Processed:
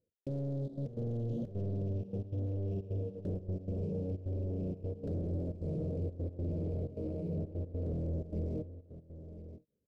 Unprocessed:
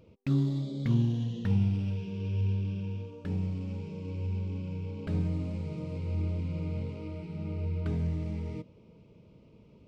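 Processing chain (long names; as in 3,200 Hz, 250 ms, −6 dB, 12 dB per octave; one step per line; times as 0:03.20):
soft clipping −29.5 dBFS, distortion −10 dB
downward compressor 3 to 1, threshold −42 dBFS, peak gain reduction 8 dB
noise gate −43 dBFS, range −33 dB
leveller curve on the samples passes 3
low shelf with overshoot 730 Hz +10 dB, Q 3
brickwall limiter −30.5 dBFS, peak gain reduction 10.5 dB
parametric band 2,000 Hz −11.5 dB 1.7 octaves
single-tap delay 1,025 ms −12.5 dB
gate pattern "x.xxxxx.x.xxxx" 155 BPM −12 dB
every ending faded ahead of time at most 340 dB per second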